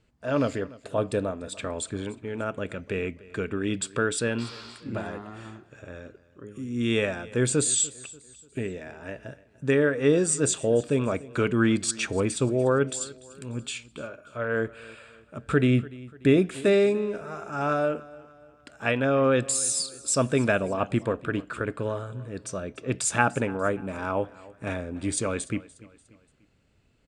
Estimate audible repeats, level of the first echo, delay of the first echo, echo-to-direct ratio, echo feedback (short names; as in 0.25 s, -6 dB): 3, -20.5 dB, 0.293 s, -19.5 dB, 44%